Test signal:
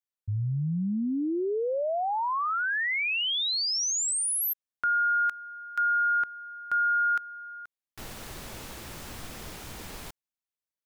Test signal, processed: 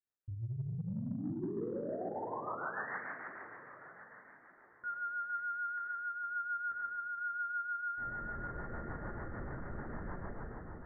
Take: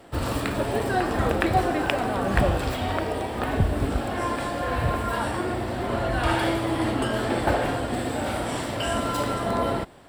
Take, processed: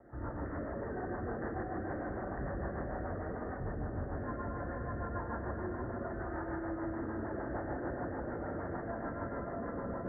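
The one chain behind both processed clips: plate-style reverb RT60 3.6 s, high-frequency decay 0.75×, DRR -8.5 dB; reverse; compressor 5:1, threshold -32 dBFS; reverse; rotary speaker horn 6.7 Hz; in parallel at -4.5 dB: soft clip -37 dBFS; on the sum: steep low-pass 1900 Hz 96 dB/oct; echo with dull and thin repeats by turns 0.614 s, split 940 Hz, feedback 50%, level -10.5 dB; gain -6.5 dB

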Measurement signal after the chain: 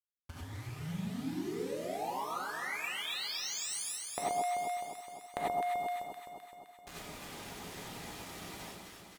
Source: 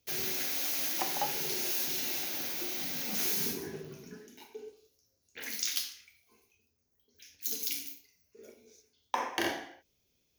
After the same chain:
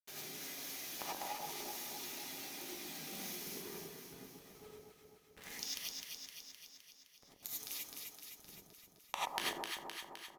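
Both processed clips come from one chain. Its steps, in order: level-crossing sampler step -37 dBFS; downsampling 32000 Hz; reverb removal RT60 0.81 s; HPF 56 Hz 12 dB/oct; compressor 6:1, threshold -38 dBFS; power-law curve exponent 2; echo with dull and thin repeats by turns 0.129 s, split 1100 Hz, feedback 79%, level -2.5 dB; non-linear reverb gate 0.12 s rising, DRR -5.5 dB; gain +5.5 dB

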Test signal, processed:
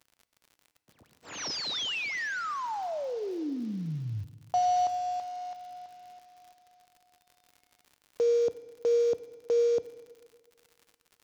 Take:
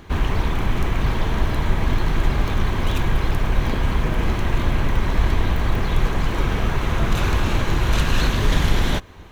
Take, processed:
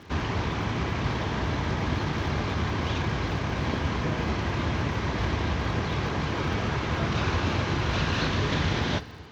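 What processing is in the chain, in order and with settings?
CVSD 32 kbps; HPF 74 Hz 24 dB/oct; crackle 82/s -42 dBFS; FDN reverb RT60 1.8 s, low-frequency decay 1×, high-frequency decay 0.9×, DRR 14 dB; gain -3 dB

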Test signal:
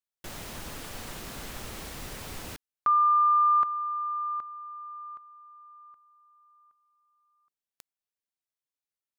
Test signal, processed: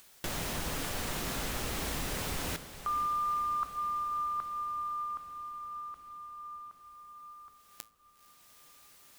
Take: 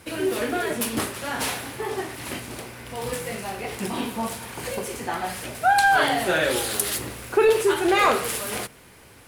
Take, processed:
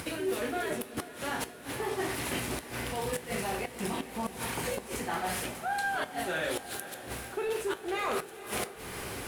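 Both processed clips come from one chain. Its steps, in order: in parallel at +1 dB: upward compressor, threshold -27 dBFS; on the sum: dynamic EQ 4700 Hz, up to -3 dB, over -43 dBFS, Q 6.7; reverse; compressor 12:1, threshold -25 dBFS; reverse; flipped gate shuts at -17 dBFS, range -26 dB; resonator 55 Hz, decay 0.28 s, harmonics odd, mix 50%; diffused feedback echo 0.482 s, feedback 71%, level -14 dB

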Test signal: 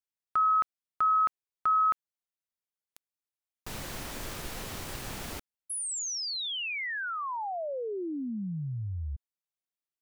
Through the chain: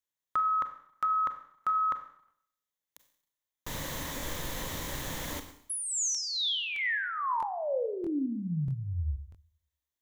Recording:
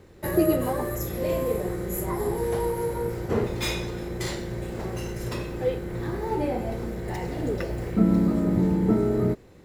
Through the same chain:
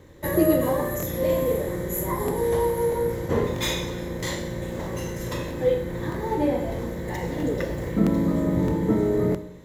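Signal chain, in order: ripple EQ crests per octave 1.1, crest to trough 7 dB; Schroeder reverb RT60 0.69 s, combs from 30 ms, DRR 7.5 dB; crackling interface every 0.64 s, samples 1024, repeat, from 0.98; gain +1 dB

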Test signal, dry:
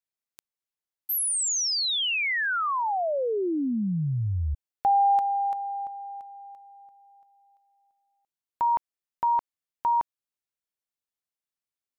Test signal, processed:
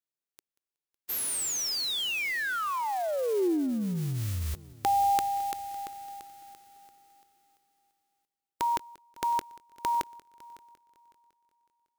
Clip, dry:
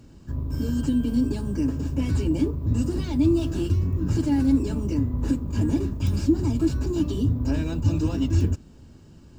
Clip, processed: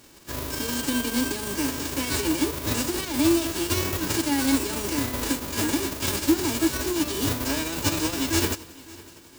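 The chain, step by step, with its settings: spectral whitening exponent 0.3; bell 360 Hz +6 dB 0.72 oct; multi-head echo 0.185 s, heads first and third, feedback 42%, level -22 dB; gain -4.5 dB

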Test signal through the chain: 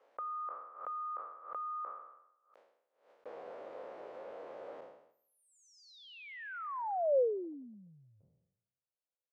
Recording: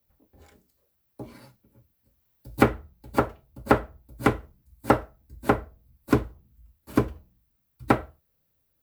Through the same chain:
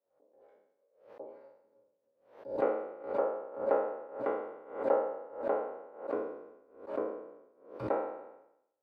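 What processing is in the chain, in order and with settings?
spectral trails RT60 0.78 s; in parallel at +1 dB: compressor, threshold -32 dBFS; on the sum: ladder band-pass 580 Hz, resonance 65%; backwards sustainer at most 110 dB/s; gain -4.5 dB

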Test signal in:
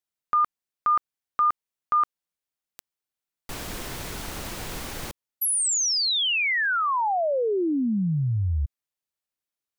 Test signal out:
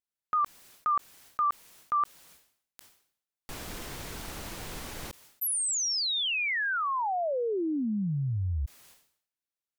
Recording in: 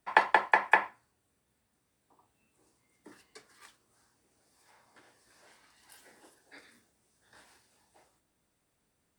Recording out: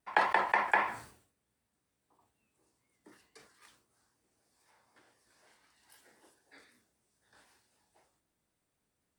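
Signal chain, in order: vibrato 3.9 Hz 62 cents; sustainer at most 99 dB/s; gain -5.5 dB

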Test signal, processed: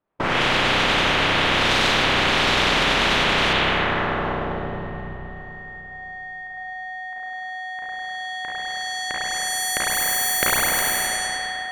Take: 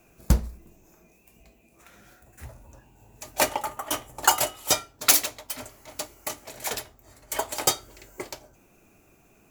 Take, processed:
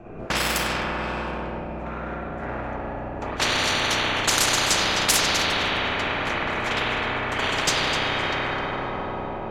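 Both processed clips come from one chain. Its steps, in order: spring tank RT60 3.4 s, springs 32/49 ms, chirp 75 ms, DRR -9.5 dB; in parallel at -7.5 dB: sample-and-hold 17×; on the sum: bell 79 Hz -6 dB 0.51 oct; on a send: echo with dull and thin repeats by turns 0.129 s, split 870 Hz, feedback 54%, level -5 dB; on the sum: low-pass opened by the level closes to 1300 Hz, open at -5.5 dBFS; spectral compressor 10:1; gain -3.5 dB

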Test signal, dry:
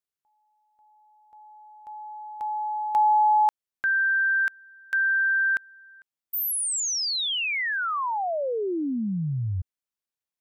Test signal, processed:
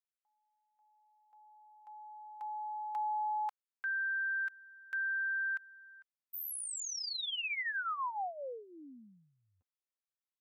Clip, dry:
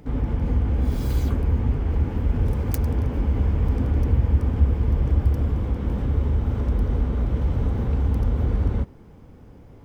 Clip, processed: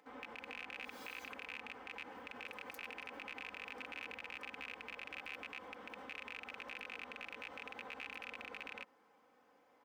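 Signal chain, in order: rattling part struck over -18 dBFS, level -13 dBFS; HPF 1000 Hz 12 dB/oct; high shelf 2300 Hz -10 dB; comb 3.9 ms, depth 60%; limiter -26 dBFS; gain -5.5 dB

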